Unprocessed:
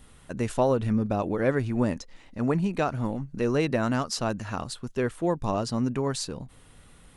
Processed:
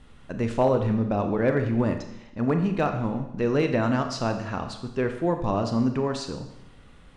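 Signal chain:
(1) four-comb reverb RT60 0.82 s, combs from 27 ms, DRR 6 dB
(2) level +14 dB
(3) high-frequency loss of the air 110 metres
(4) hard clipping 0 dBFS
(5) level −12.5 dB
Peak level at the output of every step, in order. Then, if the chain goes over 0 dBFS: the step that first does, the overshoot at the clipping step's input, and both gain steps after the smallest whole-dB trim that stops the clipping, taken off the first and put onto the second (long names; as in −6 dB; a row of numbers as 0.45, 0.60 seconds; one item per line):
−10.5, +3.5, +3.0, 0.0, −12.5 dBFS
step 2, 3.0 dB
step 2 +11 dB, step 5 −9.5 dB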